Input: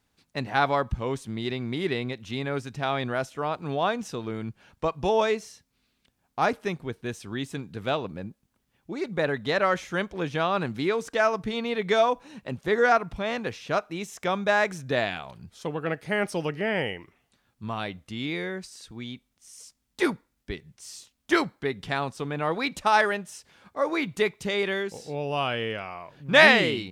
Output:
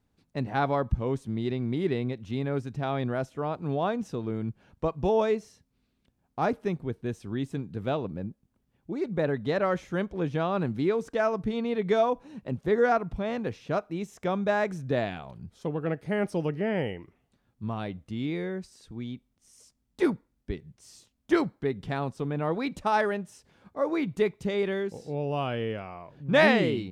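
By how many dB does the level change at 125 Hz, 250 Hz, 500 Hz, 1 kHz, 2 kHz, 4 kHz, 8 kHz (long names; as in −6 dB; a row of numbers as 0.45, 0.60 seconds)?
+2.5 dB, +1.5 dB, −1.0 dB, −4.0 dB, −8.0 dB, −9.5 dB, can't be measured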